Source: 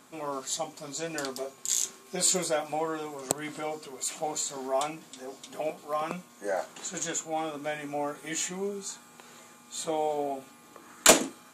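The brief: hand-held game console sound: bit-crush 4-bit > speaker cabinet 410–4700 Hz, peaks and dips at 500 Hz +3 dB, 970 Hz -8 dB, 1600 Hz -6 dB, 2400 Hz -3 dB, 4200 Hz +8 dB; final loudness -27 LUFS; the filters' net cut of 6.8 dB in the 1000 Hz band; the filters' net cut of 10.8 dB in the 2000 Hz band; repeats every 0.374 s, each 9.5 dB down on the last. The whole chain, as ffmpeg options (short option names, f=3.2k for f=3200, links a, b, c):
-af "equalizer=f=1k:t=o:g=-4.5,equalizer=f=2k:t=o:g=-8,aecho=1:1:374|748|1122|1496:0.335|0.111|0.0365|0.012,acrusher=bits=3:mix=0:aa=0.000001,highpass=410,equalizer=f=500:t=q:w=4:g=3,equalizer=f=970:t=q:w=4:g=-8,equalizer=f=1.6k:t=q:w=4:g=-6,equalizer=f=2.4k:t=q:w=4:g=-3,equalizer=f=4.2k:t=q:w=4:g=8,lowpass=f=4.7k:w=0.5412,lowpass=f=4.7k:w=1.3066,volume=6.5dB"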